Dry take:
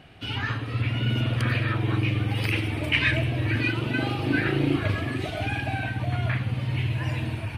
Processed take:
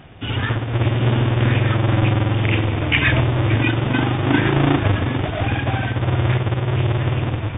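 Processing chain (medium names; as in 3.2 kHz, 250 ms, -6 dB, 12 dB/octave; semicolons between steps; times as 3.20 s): square wave that keeps the level; brick-wall FIR low-pass 3.7 kHz; trim +3 dB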